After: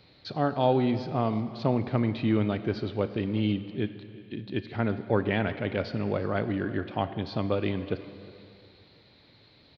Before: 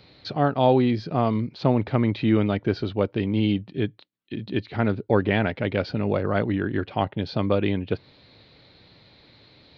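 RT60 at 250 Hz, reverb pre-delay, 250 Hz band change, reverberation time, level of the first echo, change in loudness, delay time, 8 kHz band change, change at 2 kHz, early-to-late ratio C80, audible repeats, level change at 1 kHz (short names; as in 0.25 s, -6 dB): 2.5 s, 5 ms, -4.5 dB, 2.4 s, -21.5 dB, -4.5 dB, 0.36 s, n/a, -4.5 dB, 12.0 dB, 2, -4.5 dB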